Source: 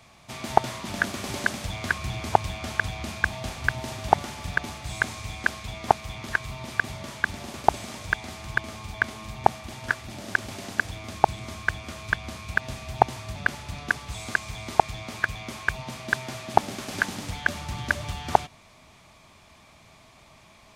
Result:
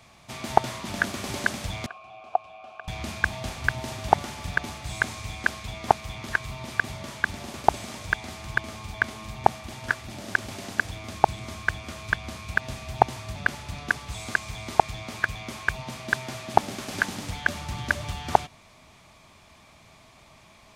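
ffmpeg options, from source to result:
-filter_complex "[0:a]asettb=1/sr,asplit=3[a][b][c];[a]atrim=end=1.864[d];[b]atrim=start=1.86:end=2.88,asetpts=PTS-STARTPTS,afade=t=in:d=0.004:c=qsin,afade=t=out:st=1.016:d=0.004:c=qsin,asplit=3[e][f][g];[e]bandpass=f=730:t=q:w=8,volume=0dB[h];[f]bandpass=f=1.09k:t=q:w=8,volume=-6dB[i];[g]bandpass=f=2.44k:t=q:w=8,volume=-9dB[j];[h][i][j]amix=inputs=3:normalize=0[k];[c]atrim=start=2.876[l];[d][k]acrossfade=d=0.004:c1=hsin:c2=qsin[m];[m][l]acrossfade=d=0.004:c1=qsin:c2=hsin"

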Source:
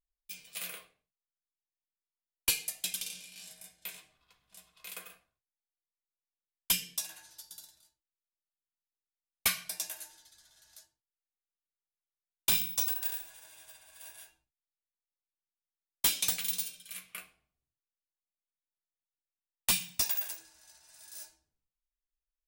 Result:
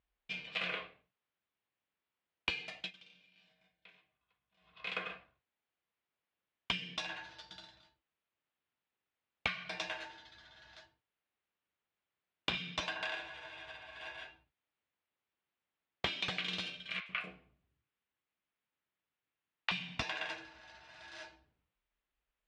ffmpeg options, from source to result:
-filter_complex "[0:a]asettb=1/sr,asplit=3[a][b][c];[a]atrim=end=17.004[d];[b]atrim=start=17:end=19.71,asetpts=PTS-STARTPTS,afade=t=in:d=0.004:c=qsin,afade=t=out:st=2.706:d=0.004:c=qsin,acrossover=split=630|5900[e][f][g];[g]adelay=60[h];[e]adelay=90[i];[i][f][h]amix=inputs=3:normalize=0,atrim=end_sample=119511[j];[c]atrim=start=19.706[k];[d][j]acrossfade=d=0.004:c1=hsin:c2=qsin[l];[l][k]acrossfade=d=0.004:c1=qsin:c2=hsin,asplit=3[m][n][o];[m]atrim=end=2.92,asetpts=PTS-STARTPTS,afade=t=out:st=2.5:d=0.42:c=qsin:silence=0.0668344[p];[n]atrim=start=2.92:end=4.6,asetpts=PTS-STARTPTS,volume=-23.5dB[q];[o]atrim=start=4.6,asetpts=PTS-STARTPTS,afade=t=in:d=0.42:c=qsin:silence=0.0668344[r];[p][q][r]concat=n=3:v=0:a=1,lowpass=f=3.2k:w=0.5412,lowpass=f=3.2k:w=1.3066,acompressor=threshold=-44dB:ratio=10,highpass=54,volume=11.5dB"

